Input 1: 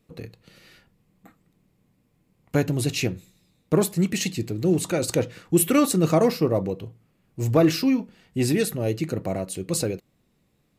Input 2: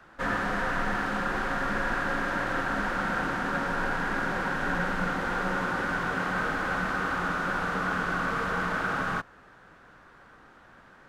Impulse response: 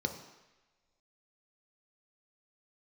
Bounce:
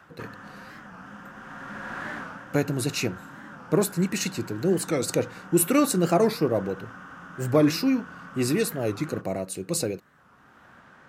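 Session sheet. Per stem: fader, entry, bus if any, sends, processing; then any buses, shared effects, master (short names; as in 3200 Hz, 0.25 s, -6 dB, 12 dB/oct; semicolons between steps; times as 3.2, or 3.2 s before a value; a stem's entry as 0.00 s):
-1.0 dB, 0.00 s, no send, low shelf 90 Hz -9.5 dB; notch 3200 Hz, Q 6.2
+2.0 dB, 0.00 s, send -19.5 dB, compressor, threshold -32 dBFS, peak gain reduction 8 dB; auto duck -10 dB, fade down 0.30 s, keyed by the first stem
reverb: on, pre-delay 3 ms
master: HPF 79 Hz; record warp 45 rpm, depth 160 cents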